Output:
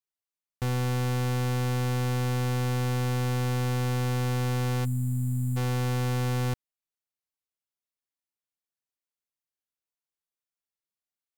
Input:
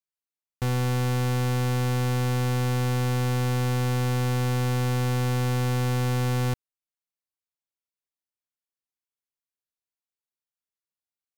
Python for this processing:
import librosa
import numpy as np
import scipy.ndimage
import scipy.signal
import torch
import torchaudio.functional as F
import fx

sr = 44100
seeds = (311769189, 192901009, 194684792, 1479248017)

y = fx.spec_box(x, sr, start_s=4.85, length_s=0.72, low_hz=340.0, high_hz=6900.0, gain_db=-28)
y = y * 10.0 ** (-2.5 / 20.0)